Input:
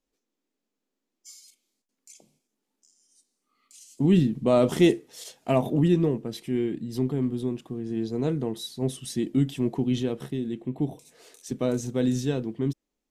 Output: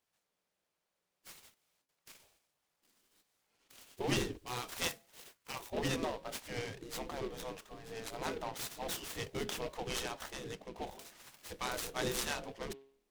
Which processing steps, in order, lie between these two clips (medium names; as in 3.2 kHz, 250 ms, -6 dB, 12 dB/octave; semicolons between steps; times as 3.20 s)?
de-hum 136.1 Hz, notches 8; 4.37–5.73 s: pre-emphasis filter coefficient 0.8; spectral gate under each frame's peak -15 dB weak; delay time shaken by noise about 2.4 kHz, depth 0.044 ms; trim +3.5 dB